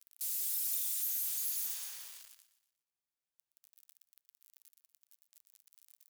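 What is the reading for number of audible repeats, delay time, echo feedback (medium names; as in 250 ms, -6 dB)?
4, 120 ms, 46%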